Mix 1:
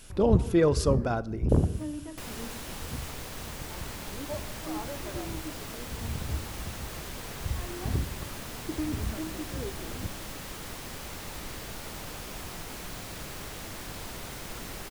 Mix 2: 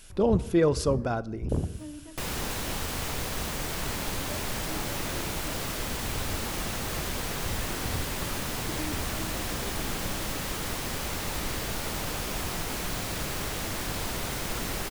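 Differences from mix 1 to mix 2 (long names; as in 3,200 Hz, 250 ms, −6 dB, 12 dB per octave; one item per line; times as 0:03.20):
first sound −5.5 dB
second sound +7.5 dB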